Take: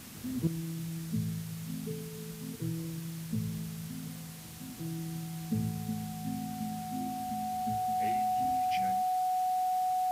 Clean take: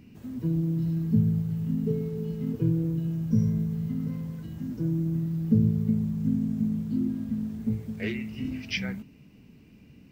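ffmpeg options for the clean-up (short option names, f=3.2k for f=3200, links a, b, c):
-af "bandreject=f=740:w=30,afwtdn=0.0035,asetnsamples=n=441:p=0,asendcmd='0.47 volume volume 11dB',volume=0dB"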